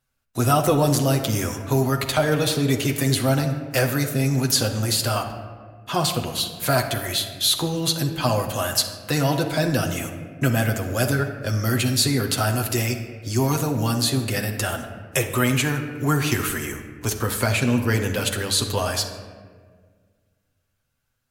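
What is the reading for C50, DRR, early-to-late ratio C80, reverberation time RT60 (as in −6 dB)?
7.5 dB, 2.5 dB, 9.5 dB, 1.7 s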